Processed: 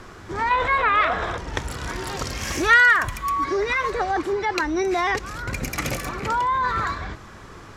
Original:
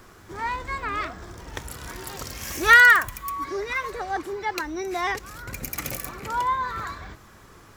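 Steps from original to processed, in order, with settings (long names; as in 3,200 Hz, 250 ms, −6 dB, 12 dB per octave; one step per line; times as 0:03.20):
gain on a spectral selection 0:00.51–0:01.37, 410–4,100 Hz +11 dB
in parallel at +1 dB: compressor whose output falls as the input rises −29 dBFS, ratio −1
on the sum: high-frequency loss of the air 59 metres
level −1.5 dB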